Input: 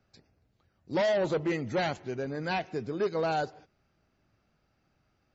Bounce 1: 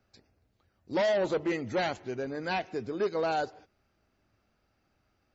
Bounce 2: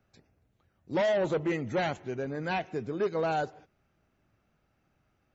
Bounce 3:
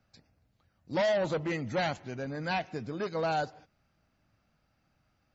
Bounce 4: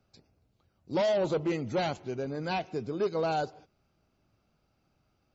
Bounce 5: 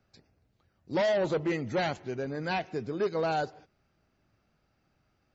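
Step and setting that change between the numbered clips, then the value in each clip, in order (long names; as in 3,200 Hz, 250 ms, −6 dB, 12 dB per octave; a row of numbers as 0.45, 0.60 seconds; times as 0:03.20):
parametric band, centre frequency: 150, 4,700, 390, 1,800, 12,000 Hertz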